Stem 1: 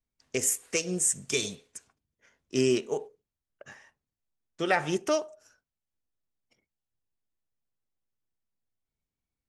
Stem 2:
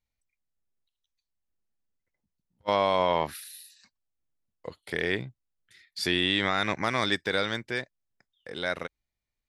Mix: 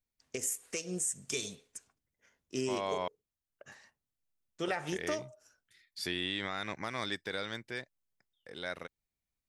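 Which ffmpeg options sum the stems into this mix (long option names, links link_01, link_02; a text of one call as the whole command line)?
ffmpeg -i stem1.wav -i stem2.wav -filter_complex "[0:a]volume=-5.5dB[link_01];[1:a]volume=-9dB,asplit=3[link_02][link_03][link_04];[link_02]atrim=end=3.08,asetpts=PTS-STARTPTS,afade=type=out:start_time=3.076:duration=0.004:curve=hsin[link_05];[link_03]atrim=start=3.08:end=3.72,asetpts=PTS-STARTPTS,volume=0[link_06];[link_04]atrim=start=3.72,asetpts=PTS-STARTPTS,afade=type=in:duration=0.004:curve=hsin[link_07];[link_05][link_06][link_07]concat=n=3:v=0:a=1[link_08];[link_01][link_08]amix=inputs=2:normalize=0,highshelf=frequency=6500:gain=4.5,alimiter=limit=-23dB:level=0:latency=1:release=188" out.wav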